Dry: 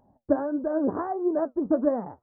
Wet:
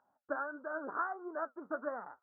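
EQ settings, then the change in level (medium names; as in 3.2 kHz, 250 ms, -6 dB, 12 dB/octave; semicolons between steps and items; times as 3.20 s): band-pass filter 1.4 kHz, Q 9; +11.0 dB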